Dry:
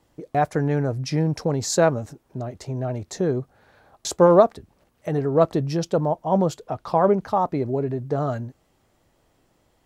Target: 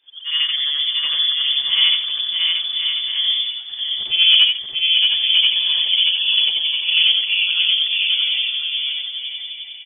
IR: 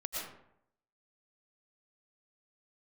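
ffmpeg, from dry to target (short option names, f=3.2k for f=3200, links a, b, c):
-af "afftfilt=real='re':imag='-im':win_size=8192:overlap=0.75,aecho=1:1:630|1040|1306|1479|1591:0.631|0.398|0.251|0.158|0.1,acontrast=78,lowpass=f=3.1k:t=q:w=0.5098,lowpass=f=3.1k:t=q:w=0.6013,lowpass=f=3.1k:t=q:w=0.9,lowpass=f=3.1k:t=q:w=2.563,afreqshift=-3600,bandreject=f=69.41:t=h:w=4,bandreject=f=138.82:t=h:w=4,bandreject=f=208.23:t=h:w=4,bandreject=f=277.64:t=h:w=4,bandreject=f=347.05:t=h:w=4,bandreject=f=416.46:t=h:w=4,bandreject=f=485.87:t=h:w=4,bandreject=f=555.28:t=h:w=4,bandreject=f=624.69:t=h:w=4,bandreject=f=694.1:t=h:w=4,bandreject=f=763.51:t=h:w=4,bandreject=f=832.92:t=h:w=4,bandreject=f=902.33:t=h:w=4,bandreject=f=971.74:t=h:w=4,bandreject=f=1.04115k:t=h:w=4,bandreject=f=1.11056k:t=h:w=4,bandreject=f=1.17997k:t=h:w=4,bandreject=f=1.24938k:t=h:w=4,bandreject=f=1.31879k:t=h:w=4,bandreject=f=1.3882k:t=h:w=4,bandreject=f=1.45761k:t=h:w=4,bandreject=f=1.52702k:t=h:w=4,bandreject=f=1.59643k:t=h:w=4,bandreject=f=1.66584k:t=h:w=4,bandreject=f=1.73525k:t=h:w=4,bandreject=f=1.80466k:t=h:w=4,bandreject=f=1.87407k:t=h:w=4,bandreject=f=1.94348k:t=h:w=4,bandreject=f=2.01289k:t=h:w=4,bandreject=f=2.0823k:t=h:w=4,bandreject=f=2.15171k:t=h:w=4,bandreject=f=2.22112k:t=h:w=4,bandreject=f=2.29053k:t=h:w=4,bandreject=f=2.35994k:t=h:w=4"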